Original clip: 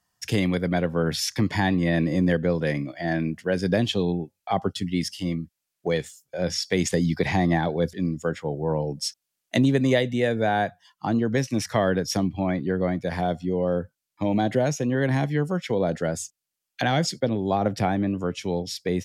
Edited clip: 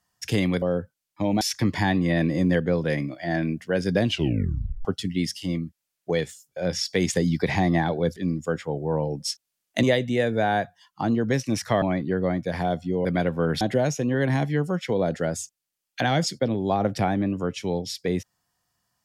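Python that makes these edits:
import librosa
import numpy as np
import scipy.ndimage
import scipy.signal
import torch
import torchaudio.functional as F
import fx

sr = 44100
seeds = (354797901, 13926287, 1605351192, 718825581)

y = fx.edit(x, sr, fx.swap(start_s=0.62, length_s=0.56, other_s=13.63, other_length_s=0.79),
    fx.tape_stop(start_s=3.83, length_s=0.79),
    fx.cut(start_s=9.6, length_s=0.27),
    fx.cut(start_s=11.86, length_s=0.54), tone=tone)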